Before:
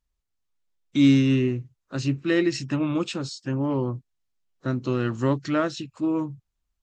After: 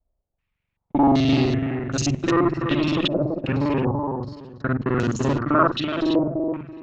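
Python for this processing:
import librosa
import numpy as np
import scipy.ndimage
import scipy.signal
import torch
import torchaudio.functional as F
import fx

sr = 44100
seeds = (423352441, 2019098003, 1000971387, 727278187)

y = fx.local_reverse(x, sr, ms=43.0)
y = fx.tube_stage(y, sr, drive_db=21.0, bias=0.3)
y = fx.echo_feedback(y, sr, ms=333, feedback_pct=28, wet_db=-6.5)
y = fx.filter_held_lowpass(y, sr, hz=2.6, low_hz=630.0, high_hz=6500.0)
y = y * librosa.db_to_amplitude(5.5)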